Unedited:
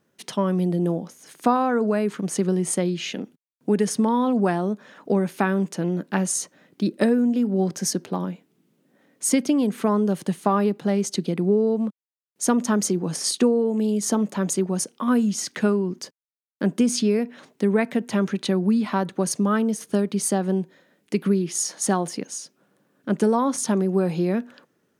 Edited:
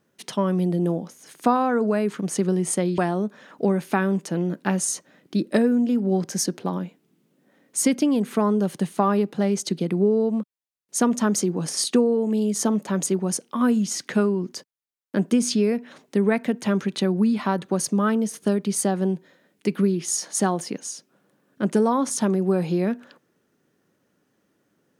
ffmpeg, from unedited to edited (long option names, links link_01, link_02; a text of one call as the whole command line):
ffmpeg -i in.wav -filter_complex "[0:a]asplit=2[link_01][link_02];[link_01]atrim=end=2.982[link_03];[link_02]atrim=start=4.448[link_04];[link_03][link_04]acrossfade=duration=0.004:curve1=hsin:curve2=hsin" out.wav